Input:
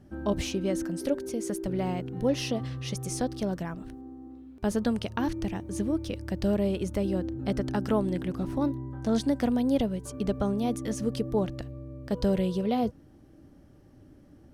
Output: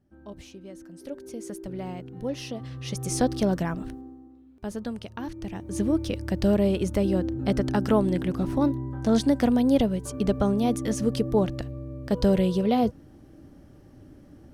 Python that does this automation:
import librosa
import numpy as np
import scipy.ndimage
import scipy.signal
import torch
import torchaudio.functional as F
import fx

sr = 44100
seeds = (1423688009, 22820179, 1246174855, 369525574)

y = fx.gain(x, sr, db=fx.line((0.82, -14.5), (1.34, -5.0), (2.57, -5.0), (3.23, 6.5), (3.85, 6.5), (4.32, -6.0), (5.35, -6.0), (5.85, 4.5)))